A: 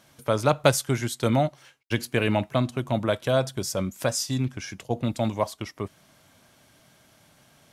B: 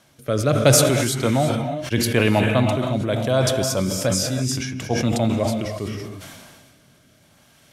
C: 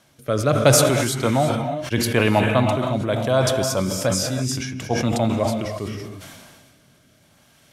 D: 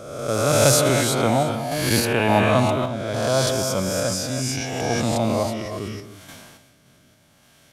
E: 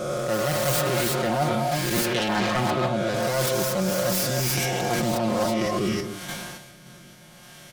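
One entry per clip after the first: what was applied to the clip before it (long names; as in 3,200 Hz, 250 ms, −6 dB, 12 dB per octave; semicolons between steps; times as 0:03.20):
rotating-speaker cabinet horn 0.75 Hz; reverb whose tail is shaped and stops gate 360 ms rising, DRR 6 dB; level that may fall only so fast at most 31 dB per second; level +4.5 dB
dynamic equaliser 1,000 Hz, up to +5 dB, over −36 dBFS, Q 1.2; level −1 dB
peak hold with a rise ahead of every peak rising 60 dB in 1.21 s; sample-and-hold tremolo; level −1 dB
phase distortion by the signal itself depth 0.51 ms; comb filter 5.6 ms, depth 86%; reversed playback; downward compressor 10 to 1, threshold −27 dBFS, peak gain reduction 18 dB; reversed playback; level +6.5 dB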